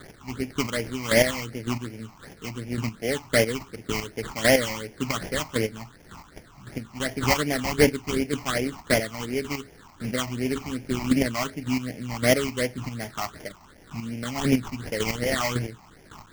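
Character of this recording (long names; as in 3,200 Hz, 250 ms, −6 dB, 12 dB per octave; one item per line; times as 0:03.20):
a quantiser's noise floor 8 bits, dither triangular
chopped level 1.8 Hz, depth 60%, duty 20%
aliases and images of a low sample rate 2,600 Hz, jitter 20%
phaser sweep stages 8, 2.7 Hz, lowest notch 460–1,200 Hz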